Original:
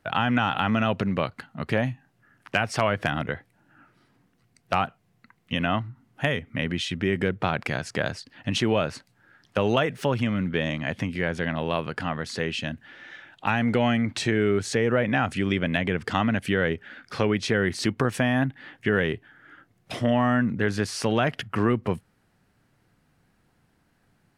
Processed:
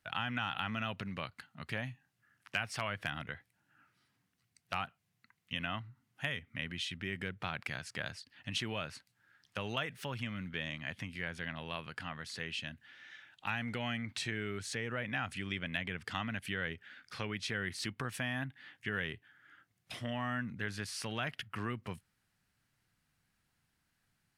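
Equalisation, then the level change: amplifier tone stack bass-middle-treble 5-5-5; dynamic bell 6.4 kHz, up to -5 dB, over -57 dBFS, Q 1.1; +1.0 dB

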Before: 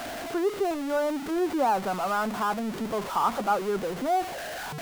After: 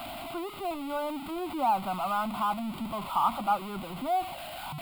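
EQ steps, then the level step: static phaser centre 1.7 kHz, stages 6; 0.0 dB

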